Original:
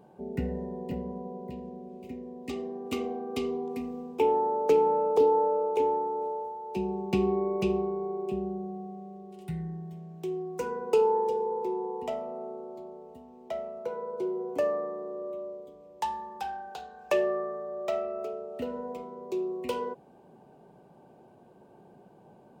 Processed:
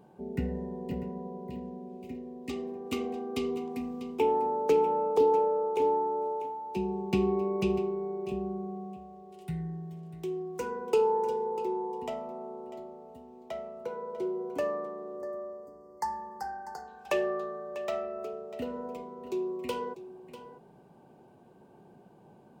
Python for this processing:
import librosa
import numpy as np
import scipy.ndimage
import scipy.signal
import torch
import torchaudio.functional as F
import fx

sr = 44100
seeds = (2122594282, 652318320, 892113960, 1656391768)

y = fx.peak_eq(x, sr, hz=600.0, db=-4.0, octaves=0.85)
y = y + 10.0 ** (-14.0 / 20.0) * np.pad(y, (int(645 * sr / 1000.0), 0))[:len(y)]
y = fx.spec_box(y, sr, start_s=15.17, length_s=1.71, low_hz=2100.0, high_hz=4300.0, gain_db=-29)